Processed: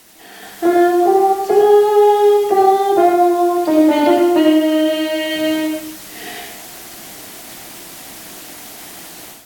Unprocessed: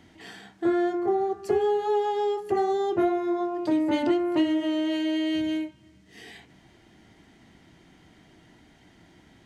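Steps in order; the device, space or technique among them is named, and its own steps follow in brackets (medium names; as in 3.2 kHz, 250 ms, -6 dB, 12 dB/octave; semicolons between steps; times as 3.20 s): filmed off a television (band-pass 230–6200 Hz; peaking EQ 710 Hz +7.5 dB 0.48 oct; reverberation RT60 0.65 s, pre-delay 66 ms, DRR 0.5 dB; white noise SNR 23 dB; level rider gain up to 12 dB; AAC 64 kbps 48 kHz)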